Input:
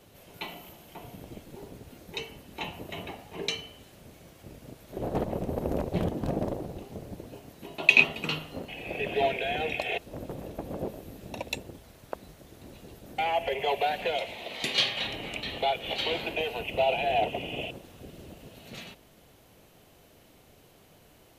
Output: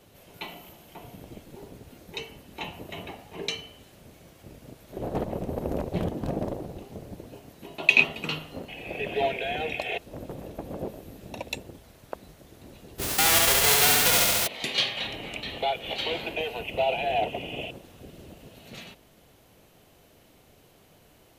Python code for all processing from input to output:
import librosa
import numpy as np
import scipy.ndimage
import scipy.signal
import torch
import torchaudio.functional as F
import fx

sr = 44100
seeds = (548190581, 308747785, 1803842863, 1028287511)

y = fx.envelope_flatten(x, sr, power=0.1, at=(12.98, 14.46), fade=0.02)
y = fx.room_flutter(y, sr, wall_m=11.8, rt60_s=1.1, at=(12.98, 14.46), fade=0.02)
y = fx.env_flatten(y, sr, amount_pct=50, at=(12.98, 14.46), fade=0.02)